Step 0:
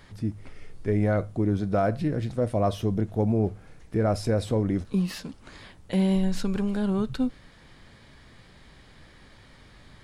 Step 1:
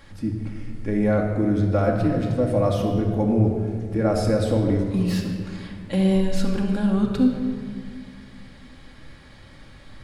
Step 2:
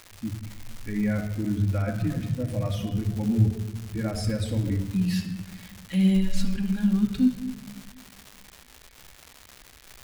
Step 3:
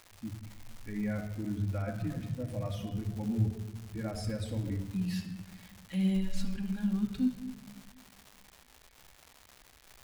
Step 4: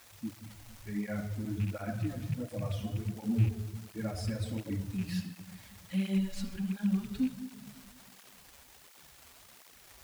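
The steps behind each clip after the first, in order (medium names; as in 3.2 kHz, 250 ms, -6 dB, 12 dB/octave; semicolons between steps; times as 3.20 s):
simulated room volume 3400 m³, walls mixed, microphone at 2.3 m; trim +1 dB
expander on every frequency bin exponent 1.5; high-order bell 640 Hz -11.5 dB 2.3 oct; crackle 340 per s -34 dBFS; trim +1 dB
peaking EQ 800 Hz +3.5 dB 1.1 oct; trim -8.5 dB
rattle on loud lows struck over -29 dBFS, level -36 dBFS; in parallel at -8.5 dB: word length cut 8-bit, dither triangular; on the sum: cancelling through-zero flanger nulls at 1.4 Hz, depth 6.8 ms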